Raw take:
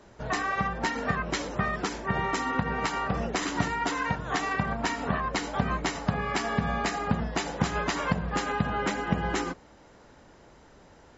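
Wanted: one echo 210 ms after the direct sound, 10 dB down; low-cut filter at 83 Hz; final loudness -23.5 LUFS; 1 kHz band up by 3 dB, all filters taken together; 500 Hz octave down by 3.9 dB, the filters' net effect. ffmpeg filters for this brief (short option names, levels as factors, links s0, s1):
-af "highpass=83,equalizer=f=500:t=o:g=-7,equalizer=f=1000:t=o:g=5.5,aecho=1:1:210:0.316,volume=1.68"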